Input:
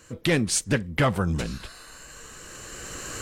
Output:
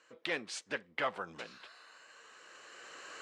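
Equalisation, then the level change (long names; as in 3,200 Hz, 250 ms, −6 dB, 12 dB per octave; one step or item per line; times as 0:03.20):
band-pass filter 570–3,900 Hz
−8.5 dB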